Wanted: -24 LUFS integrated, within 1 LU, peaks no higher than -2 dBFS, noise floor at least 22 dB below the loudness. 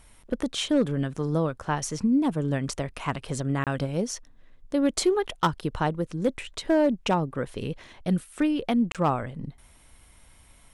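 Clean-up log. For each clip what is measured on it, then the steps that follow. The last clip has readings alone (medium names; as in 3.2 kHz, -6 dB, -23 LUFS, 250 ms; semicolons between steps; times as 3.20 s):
clipped samples 0.4%; clipping level -15.0 dBFS; dropouts 2; longest dropout 27 ms; loudness -27.0 LUFS; peak level -15.0 dBFS; loudness target -24.0 LUFS
-> clip repair -15 dBFS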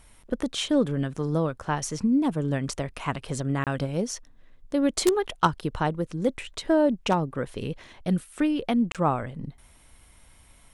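clipped samples 0.0%; dropouts 2; longest dropout 27 ms
-> interpolate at 3.64/8.92 s, 27 ms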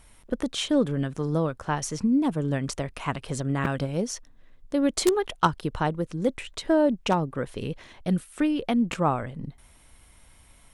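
dropouts 0; loudness -27.0 LUFS; peak level -6.0 dBFS; loudness target -24.0 LUFS
-> trim +3 dB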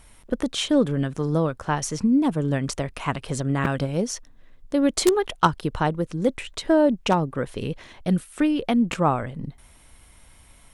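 loudness -24.0 LUFS; peak level -3.0 dBFS; noise floor -52 dBFS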